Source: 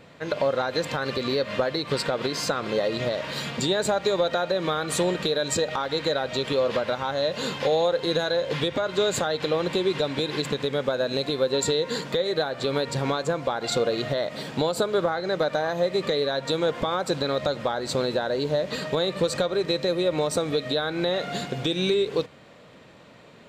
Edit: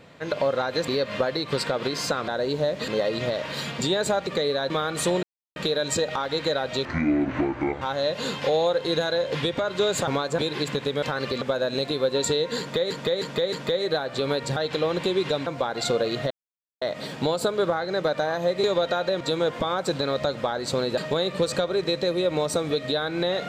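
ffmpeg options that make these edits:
-filter_complex "[0:a]asplit=22[a][b][c][d][e][f][g][h][i][j][k][l][m][n][o][p][q][r][s][t][u][v];[a]atrim=end=0.882[w];[b]atrim=start=1.268:end=2.672[x];[c]atrim=start=18.188:end=18.792[y];[d]atrim=start=2.668:end=4.062[z];[e]atrim=start=15.988:end=16.422[aa];[f]atrim=start=4.628:end=5.16,asetpts=PTS-STARTPTS,afade=t=out:st=0.528:d=0.004:c=hsin,apad=pad_dur=0.33[ab];[g]atrim=start=5.16:end=6.454,asetpts=PTS-STARTPTS,afade=t=in:d=0.004:c=hsin[ac];[h]atrim=start=6.45:end=7,asetpts=PTS-STARTPTS,asetrate=25137,aresample=44100[ad];[i]atrim=start=6.996:end=9.262[ae];[j]atrim=start=13.018:end=13.332[af];[k]atrim=start=10.158:end=10.802[ag];[l]atrim=start=0.878:end=1.272[ah];[m]atrim=start=10.798:end=12.292[ai];[n]atrim=start=11.978:end=12.292[aj];[o]atrim=start=11.978:end=12.292[ak];[p]atrim=start=11.978:end=13.022[al];[q]atrim=start=9.258:end=10.162[am];[r]atrim=start=13.328:end=14.17,asetpts=PTS-STARTPTS,afade=t=out:st=0.838:d=0.004:c=hsin,apad=pad_dur=0.51[an];[s]atrim=start=14.17:end=15.992,asetpts=PTS-STARTPTS,afade=t=in:d=0.004:c=hsin[ao];[t]atrim=start=4.058:end=4.632[ap];[u]atrim=start=16.418:end=18.192[aq];[v]atrim=start=18.788[ar];[w][x]acrossfade=d=0.004:c1=hsin:c2=hsin[as];[as][y]acrossfade=d=0.004:c1=hsin:c2=hsin[at];[at][z]acrossfade=d=0.004:c1=hsin:c2=hsin[au];[au][aa]acrossfade=d=0.004:c1=hsin:c2=hsin[av];[ab][ac]concat=n=2:v=0:a=1[aw];[av][aw]acrossfade=d=0.004:c1=hsin:c2=hsin[ax];[ax][ad]acrossfade=d=0.004:c1=hsin:c2=hsin[ay];[ay][ae]acrossfade=d=0.004:c1=hsin:c2=hsin[az];[az][af]acrossfade=d=0.004:c1=hsin:c2=hsin[ba];[ba][ag]acrossfade=d=0.004:c1=hsin:c2=hsin[bb];[bb][ah]acrossfade=d=0.004:c1=hsin:c2=hsin[bc];[bc][ai]acrossfade=d=0.004:c1=hsin:c2=hsin[bd];[bd][aj]acrossfade=d=0.004:c1=hsin:c2=hsin[be];[be][ak]acrossfade=d=0.004:c1=hsin:c2=hsin[bf];[bf][al]acrossfade=d=0.004:c1=hsin:c2=hsin[bg];[bg][am]acrossfade=d=0.004:c1=hsin:c2=hsin[bh];[an][ao]concat=n=2:v=0:a=1[bi];[bh][bi]acrossfade=d=0.004:c1=hsin:c2=hsin[bj];[bj][ap]acrossfade=d=0.004:c1=hsin:c2=hsin[bk];[bk][aq]acrossfade=d=0.004:c1=hsin:c2=hsin[bl];[bl][ar]acrossfade=d=0.004:c1=hsin:c2=hsin"

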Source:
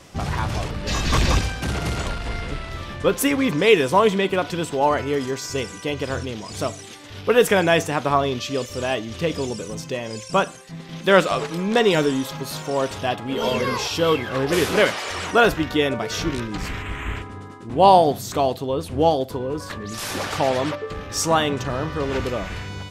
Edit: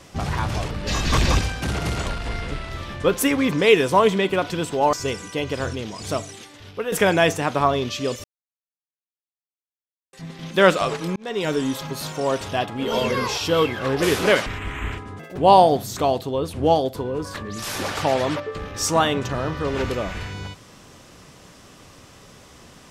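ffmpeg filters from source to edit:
-filter_complex "[0:a]asplit=9[a][b][c][d][e][f][g][h][i];[a]atrim=end=4.932[j];[b]atrim=start=5.428:end=7.42,asetpts=PTS-STARTPTS,afade=t=out:st=1.372:d=0.62:silence=0.199526[k];[c]atrim=start=7.42:end=8.74,asetpts=PTS-STARTPTS,afade=t=in:d=0.004:c=hsin:silence=0.199526,afade=t=out:st=1.316:d=0.004:c=hsin[l];[d]atrim=start=8.74:end=10.63,asetpts=PTS-STARTPTS,volume=0[m];[e]atrim=start=10.63:end=11.66,asetpts=PTS-STARTPTS,afade=t=in:d=0.004:c=hsin,afade=t=out:st=1.026:d=0.004:c=hsin[n];[f]atrim=start=11.66:end=14.962,asetpts=PTS-STARTPTS,afade=t=in:d=0.55[o];[g]atrim=start=16.698:end=17.434[p];[h]atrim=start=17.43:end=17.73,asetpts=PTS-STARTPTS,asetrate=71001,aresample=44100,atrim=end_sample=8217,asetpts=PTS-STARTPTS[q];[i]atrim=start=17.726[r];[k][l][m][n][o]concat=n=5:v=0:a=1[s];[j][s]acrossfade=d=0.004:c1=hsin:c2=hsin[t];[t][p]acrossfade=d=0.004:c1=hsin:c2=hsin[u];[u][q]acrossfade=d=0.004:c1=hsin:c2=hsin[v];[v][r]acrossfade=d=0.004:c1=hsin:c2=hsin"

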